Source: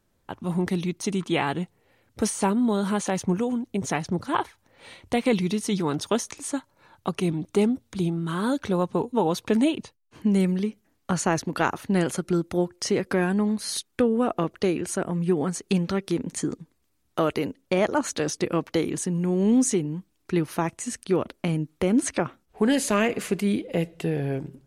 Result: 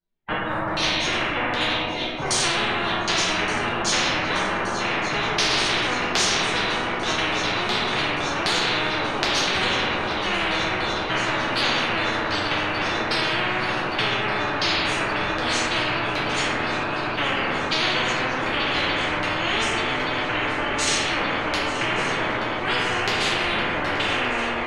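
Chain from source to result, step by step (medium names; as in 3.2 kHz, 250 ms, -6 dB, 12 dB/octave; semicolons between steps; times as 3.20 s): gate -48 dBFS, range -38 dB; formant-preserving pitch shift +9.5 st; chorus voices 4, 0.23 Hz, delay 12 ms, depth 4.2 ms; LFO low-pass saw down 1.3 Hz 590–4500 Hz; shuffle delay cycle 1172 ms, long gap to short 3:1, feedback 75%, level -17 dB; reverberation RT60 1.0 s, pre-delay 6 ms, DRR -6.5 dB; spectrum-flattening compressor 10:1; trim -1 dB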